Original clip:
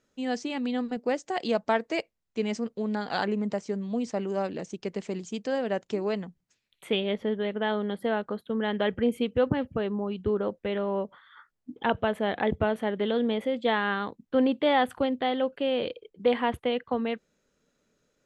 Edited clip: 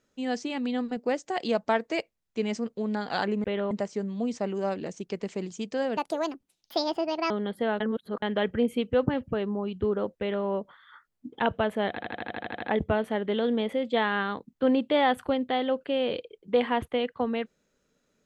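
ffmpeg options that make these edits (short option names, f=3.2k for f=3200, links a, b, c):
-filter_complex "[0:a]asplit=16[a][b][c][d][e][f][g][h][i][j][k][l][m][n][o][p];[a]atrim=end=3.442[q];[b]atrim=start=10.618:end=10.892[r];[c]atrim=start=3.438:end=5.704[s];[d]atrim=start=5.7:end=7.74,asetpts=PTS-STARTPTS,asetrate=67473,aresample=44100[t];[e]atrim=start=7.736:end=8.242[u];[f]atrim=start=8.238:end=8.662,asetpts=PTS-STARTPTS,areverse[v];[g]atrim=start=8.658:end=12.412[w];[h]atrim=start=12.328:end=12.412[x];[i]atrim=start=12.328:end=12.412[y];[j]atrim=start=12.328:end=12.412[z];[k]atrim=start=12.328:end=12.412[aa];[l]atrim=start=12.328:end=12.412[ab];[m]atrim=start=12.328:end=12.412[ac];[n]atrim=start=12.328:end=12.412[ad];[o]atrim=start=12.328:end=12.412[ae];[p]atrim=start=12.328[af];[q][r]acrossfade=d=0.004:c1=hsin:c2=hsin[ag];[ag][s]acrossfade=d=0.004:c1=hsin:c2=hsin[ah];[ah][t]acrossfade=d=0.004:c1=hsin:c2=hsin[ai];[ai][u]acrossfade=d=0.004:c1=hsin:c2=hsin[aj];[aj][v]acrossfade=d=0.004:c1=hsin:c2=hsin[ak];[ak][w]acrossfade=d=0.004:c1=hsin:c2=hsin[al];[al][x]acrossfade=d=0.004:c1=hsin:c2=hsin[am];[am][y]acrossfade=d=0.004:c1=hsin:c2=hsin[an];[an][z]acrossfade=d=0.004:c1=hsin:c2=hsin[ao];[ao][aa]acrossfade=d=0.004:c1=hsin:c2=hsin[ap];[ap][ab]acrossfade=d=0.004:c1=hsin:c2=hsin[aq];[aq][ac]acrossfade=d=0.004:c1=hsin:c2=hsin[ar];[ar][ad]acrossfade=d=0.004:c1=hsin:c2=hsin[as];[as][ae]acrossfade=d=0.004:c1=hsin:c2=hsin[at];[at][af]acrossfade=d=0.004:c1=hsin:c2=hsin"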